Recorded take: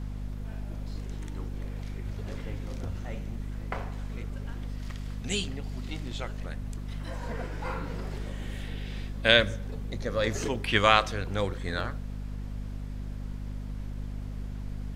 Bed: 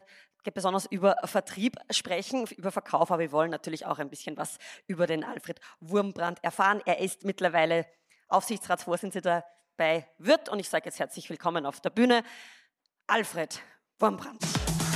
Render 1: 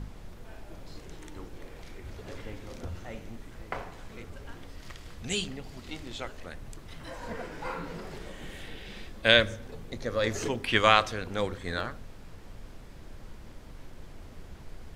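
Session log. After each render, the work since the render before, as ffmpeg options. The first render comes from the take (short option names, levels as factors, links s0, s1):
-af "bandreject=f=50:t=h:w=4,bandreject=f=100:t=h:w=4,bandreject=f=150:t=h:w=4,bandreject=f=200:t=h:w=4,bandreject=f=250:t=h:w=4"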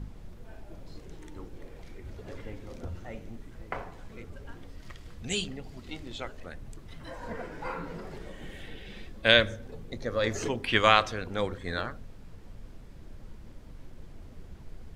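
-af "afftdn=nr=6:nf=-47"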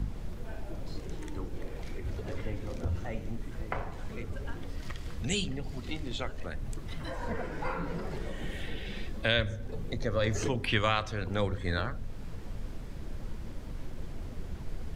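-filter_complex "[0:a]asplit=2[s0][s1];[s1]alimiter=limit=0.188:level=0:latency=1:release=406,volume=1.33[s2];[s0][s2]amix=inputs=2:normalize=0,acrossover=split=150[s3][s4];[s4]acompressor=threshold=0.00631:ratio=1.5[s5];[s3][s5]amix=inputs=2:normalize=0"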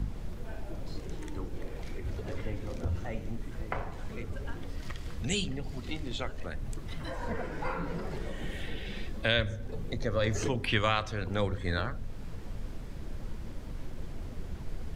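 -af anull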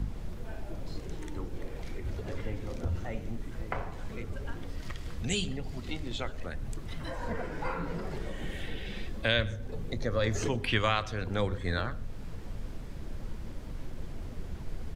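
-af "aecho=1:1:123:0.0668"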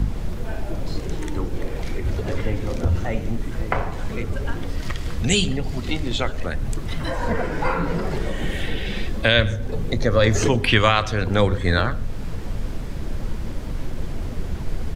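-af "volume=3.98,alimiter=limit=0.708:level=0:latency=1"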